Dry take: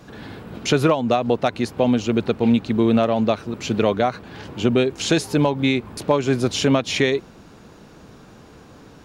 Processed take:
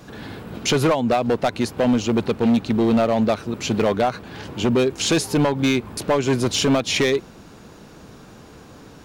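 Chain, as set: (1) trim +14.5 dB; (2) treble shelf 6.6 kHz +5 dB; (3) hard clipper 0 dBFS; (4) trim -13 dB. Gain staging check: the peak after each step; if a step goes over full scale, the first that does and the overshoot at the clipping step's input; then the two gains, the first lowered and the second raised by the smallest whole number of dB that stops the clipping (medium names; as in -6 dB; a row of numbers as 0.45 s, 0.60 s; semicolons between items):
+8.5 dBFS, +9.0 dBFS, 0.0 dBFS, -13.0 dBFS; step 1, 9.0 dB; step 1 +5.5 dB, step 4 -4 dB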